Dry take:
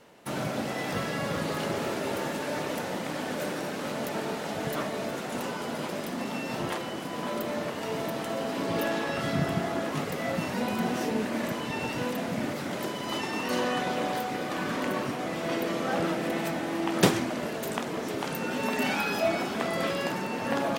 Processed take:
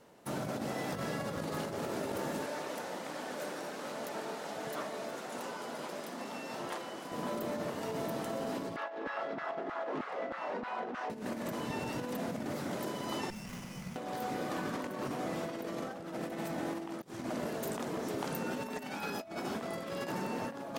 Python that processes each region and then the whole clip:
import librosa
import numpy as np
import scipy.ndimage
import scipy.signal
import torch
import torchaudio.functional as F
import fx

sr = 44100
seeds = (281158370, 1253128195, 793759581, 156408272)

y = fx.chain(x, sr, fx.highpass(hz=540.0, slope=6),
    fx.high_shelf(hz=11000.0, db=-7.0), at=(2.46, 7.12))
y = fx.chain(y, sr, fx.lowpass(hz=2600.0, slope=12),
    fx.filter_lfo_highpass(shape='saw_down', hz=3.2, low_hz=270.0, high_hz=1500.0, q=1.8),
    fx.transformer_sat(knee_hz=710.0), at=(8.76, 11.1))
y = fx.chain(y, sr, fx.brickwall_bandstop(low_hz=230.0, high_hz=1900.0),
    fx.peak_eq(hz=1400.0, db=-3.5, octaves=1.5),
    fx.running_max(window=9), at=(13.3, 13.96))
y = fx.peak_eq(y, sr, hz=2600.0, db=-5.5, octaves=1.5)
y = fx.over_compress(y, sr, threshold_db=-32.0, ratio=-0.5)
y = y * librosa.db_to_amplitude(-5.0)